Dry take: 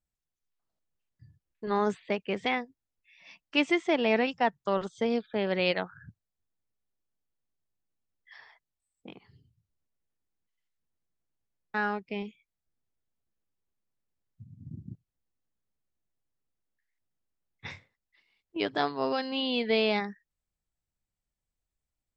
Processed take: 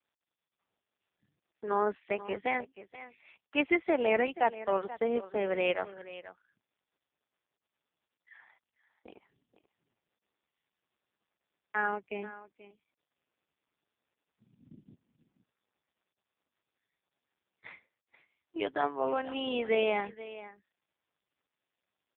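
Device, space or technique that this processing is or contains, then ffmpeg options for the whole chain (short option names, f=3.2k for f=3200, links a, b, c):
satellite phone: -af "highpass=310,lowpass=3k,aecho=1:1:481:0.168" -ar 8000 -c:a libopencore_amrnb -b:a 4750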